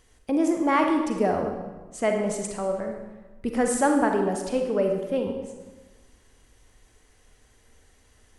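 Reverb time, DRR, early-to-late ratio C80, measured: 1.2 s, 3.0 dB, 6.5 dB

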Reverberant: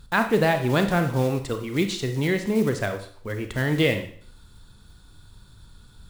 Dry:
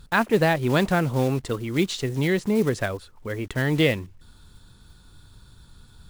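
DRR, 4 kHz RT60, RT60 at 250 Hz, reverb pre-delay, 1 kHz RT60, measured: 6.5 dB, 0.50 s, 0.55 s, 28 ms, 0.60 s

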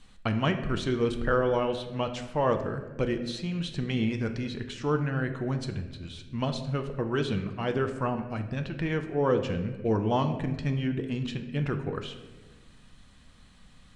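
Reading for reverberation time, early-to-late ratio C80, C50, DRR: 1.3 s, 11.0 dB, 9.0 dB, 6.0 dB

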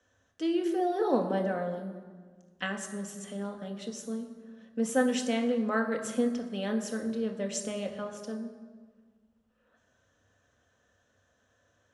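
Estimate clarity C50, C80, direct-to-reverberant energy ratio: 9.0 dB, 10.5 dB, 2.5 dB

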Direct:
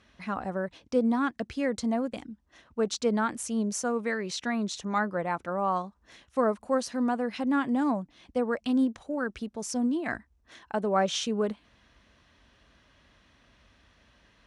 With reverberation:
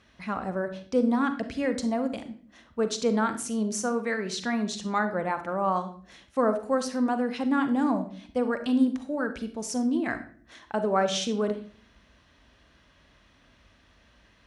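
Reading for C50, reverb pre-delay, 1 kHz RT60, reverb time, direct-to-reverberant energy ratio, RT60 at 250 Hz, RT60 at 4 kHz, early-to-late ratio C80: 11.0 dB, 37 ms, 0.40 s, 0.50 s, 9.0 dB, 0.75 s, 0.40 s, 15.5 dB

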